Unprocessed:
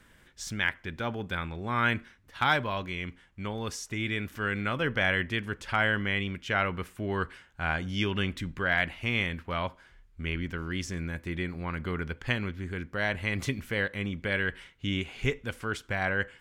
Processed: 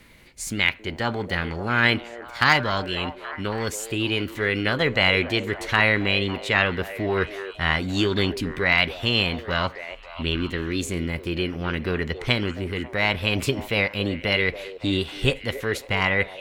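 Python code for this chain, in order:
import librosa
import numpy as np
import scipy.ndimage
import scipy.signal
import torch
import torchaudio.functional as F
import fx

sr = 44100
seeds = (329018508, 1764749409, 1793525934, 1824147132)

y = fx.formant_shift(x, sr, semitones=4)
y = fx.echo_stepped(y, sr, ms=276, hz=510.0, octaves=0.7, feedback_pct=70, wet_db=-9.0)
y = y * 10.0 ** (7.0 / 20.0)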